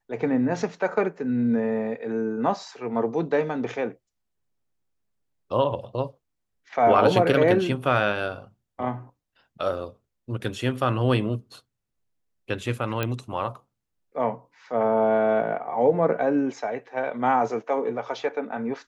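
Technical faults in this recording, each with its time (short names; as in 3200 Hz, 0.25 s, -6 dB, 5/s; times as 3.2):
13.03 pop -12 dBFS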